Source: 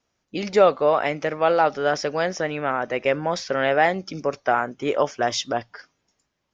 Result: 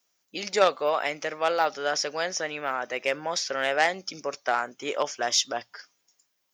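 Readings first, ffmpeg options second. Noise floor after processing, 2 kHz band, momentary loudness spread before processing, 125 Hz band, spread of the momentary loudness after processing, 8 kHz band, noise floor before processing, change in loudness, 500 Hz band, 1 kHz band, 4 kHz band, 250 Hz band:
-75 dBFS, -2.5 dB, 9 LU, -15.0 dB, 9 LU, n/a, -76 dBFS, -4.5 dB, -7.0 dB, -5.0 dB, +2.5 dB, -10.5 dB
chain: -af "aeval=exprs='0.596*(cos(1*acos(clip(val(0)/0.596,-1,1)))-cos(1*PI/2))+0.0237*(cos(2*acos(clip(val(0)/0.596,-1,1)))-cos(2*PI/2))+0.106*(cos(3*acos(clip(val(0)/0.596,-1,1)))-cos(3*PI/2))+0.0119*(cos(4*acos(clip(val(0)/0.596,-1,1)))-cos(4*PI/2))+0.0266*(cos(5*acos(clip(val(0)/0.596,-1,1)))-cos(5*PI/2))':c=same,aemphasis=mode=production:type=riaa,volume=-1.5dB"

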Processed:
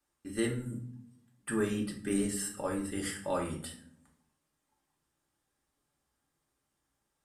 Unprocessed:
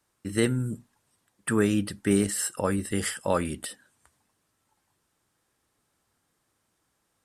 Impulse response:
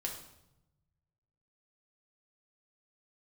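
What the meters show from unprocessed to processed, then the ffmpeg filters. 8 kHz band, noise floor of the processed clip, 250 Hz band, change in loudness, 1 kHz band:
-7.5 dB, -82 dBFS, -7.0 dB, -7.5 dB, -6.5 dB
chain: -filter_complex "[1:a]atrim=start_sample=2205,asetrate=74970,aresample=44100[a];[0:a][a]afir=irnorm=-1:irlink=0,volume=-3.5dB"

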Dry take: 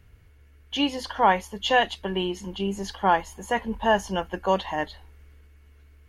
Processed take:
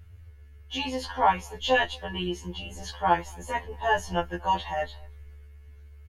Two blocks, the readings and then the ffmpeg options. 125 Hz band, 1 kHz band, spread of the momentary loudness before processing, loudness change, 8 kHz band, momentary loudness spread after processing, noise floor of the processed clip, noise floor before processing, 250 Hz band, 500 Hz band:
-1.0 dB, -2.0 dB, 9 LU, -2.5 dB, -2.0 dB, 12 LU, -49 dBFS, -54 dBFS, -6.5 dB, -4.0 dB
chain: -filter_complex "[0:a]lowshelf=f=130:t=q:w=1.5:g=7,asplit=2[a][b];[b]adelay=230,highpass=300,lowpass=3.4k,asoftclip=type=hard:threshold=-15.5dB,volume=-27dB[c];[a][c]amix=inputs=2:normalize=0,afftfilt=real='re*2*eq(mod(b,4),0)':imag='im*2*eq(mod(b,4),0)':win_size=2048:overlap=0.75"

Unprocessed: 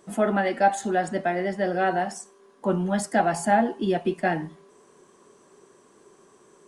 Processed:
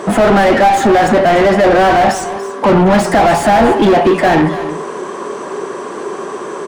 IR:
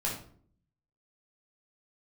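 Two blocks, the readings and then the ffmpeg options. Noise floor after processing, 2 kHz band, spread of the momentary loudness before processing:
-25 dBFS, +13.5 dB, 9 LU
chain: -filter_complex "[0:a]asplit=2[a][b];[b]highpass=f=720:p=1,volume=38dB,asoftclip=type=tanh:threshold=-8dB[c];[a][c]amix=inputs=2:normalize=0,lowpass=f=1k:p=1,volume=-6dB,asplit=2[d][e];[e]aecho=0:1:285:0.211[f];[d][f]amix=inputs=2:normalize=0,volume=7dB"

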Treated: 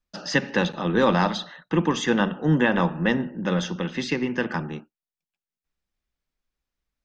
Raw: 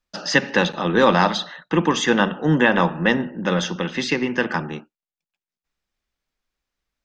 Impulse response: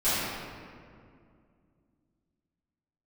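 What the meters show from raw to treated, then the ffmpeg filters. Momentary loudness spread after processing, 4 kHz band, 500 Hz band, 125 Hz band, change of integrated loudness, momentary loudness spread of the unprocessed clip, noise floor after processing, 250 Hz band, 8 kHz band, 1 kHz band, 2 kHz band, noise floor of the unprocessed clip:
8 LU, -6.0 dB, -4.0 dB, -1.0 dB, -4.0 dB, 9 LU, under -85 dBFS, -2.0 dB, -6.0 dB, -5.5 dB, -6.0 dB, under -85 dBFS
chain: -af "lowshelf=f=290:g=6.5,volume=-6dB"

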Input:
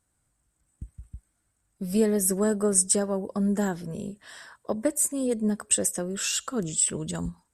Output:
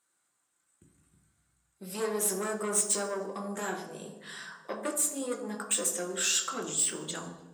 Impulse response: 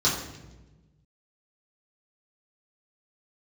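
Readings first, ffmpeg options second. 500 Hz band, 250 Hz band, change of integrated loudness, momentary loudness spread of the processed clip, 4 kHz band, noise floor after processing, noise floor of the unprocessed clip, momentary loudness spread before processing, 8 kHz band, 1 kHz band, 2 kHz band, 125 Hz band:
-6.5 dB, -12.0 dB, -4.5 dB, 16 LU, +0.5 dB, -77 dBFS, -75 dBFS, 15 LU, -3.5 dB, +0.5 dB, +1.0 dB, -13.5 dB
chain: -filter_complex "[0:a]asoftclip=type=tanh:threshold=-21.5dB,highpass=520,asplit=2[a][b];[1:a]atrim=start_sample=2205[c];[b][c]afir=irnorm=-1:irlink=0,volume=-14dB[d];[a][d]amix=inputs=2:normalize=0"

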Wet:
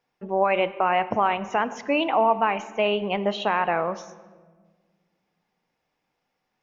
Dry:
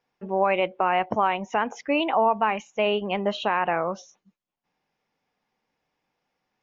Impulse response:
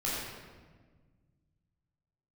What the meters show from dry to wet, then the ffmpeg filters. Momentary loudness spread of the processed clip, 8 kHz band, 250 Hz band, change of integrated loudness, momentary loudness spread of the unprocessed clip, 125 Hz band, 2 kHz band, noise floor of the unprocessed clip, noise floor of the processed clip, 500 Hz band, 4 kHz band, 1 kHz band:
6 LU, n/a, +0.5 dB, +1.0 dB, 6 LU, +0.5 dB, +0.5 dB, -83 dBFS, -78 dBFS, +1.0 dB, +0.5 dB, +1.0 dB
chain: -filter_complex "[0:a]asplit=2[a][b];[1:a]atrim=start_sample=2205[c];[b][c]afir=irnorm=-1:irlink=0,volume=-19.5dB[d];[a][d]amix=inputs=2:normalize=0"

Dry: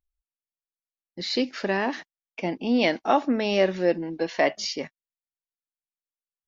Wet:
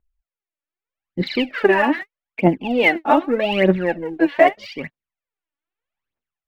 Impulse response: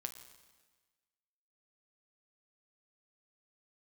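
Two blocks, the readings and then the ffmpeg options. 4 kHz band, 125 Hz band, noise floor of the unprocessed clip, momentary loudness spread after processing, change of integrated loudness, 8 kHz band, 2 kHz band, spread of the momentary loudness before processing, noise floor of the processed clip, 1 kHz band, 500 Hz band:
+1.5 dB, +11.0 dB, under -85 dBFS, 17 LU, +7.0 dB, n/a, +9.5 dB, 12 LU, under -85 dBFS, +7.5 dB, +6.5 dB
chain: -af "lowpass=f=2.8k:w=0.5412,lowpass=f=2.8k:w=1.3066,aphaser=in_gain=1:out_gain=1:delay=3.6:decay=0.77:speed=0.81:type=triangular,dynaudnorm=f=550:g=3:m=15dB,volume=-1dB"

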